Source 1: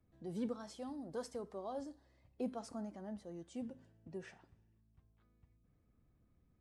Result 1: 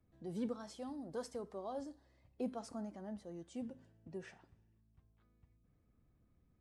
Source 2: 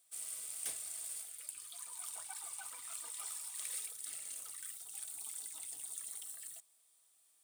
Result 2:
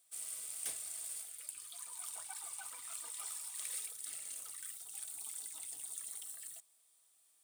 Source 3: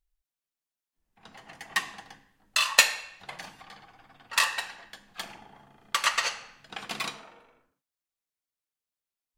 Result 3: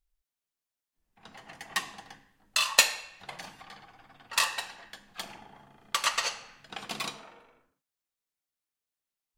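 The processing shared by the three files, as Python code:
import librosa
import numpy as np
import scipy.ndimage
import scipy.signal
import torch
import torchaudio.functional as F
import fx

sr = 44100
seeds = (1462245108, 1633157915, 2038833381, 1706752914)

y = fx.dynamic_eq(x, sr, hz=1800.0, q=1.2, threshold_db=-44.0, ratio=4.0, max_db=-5)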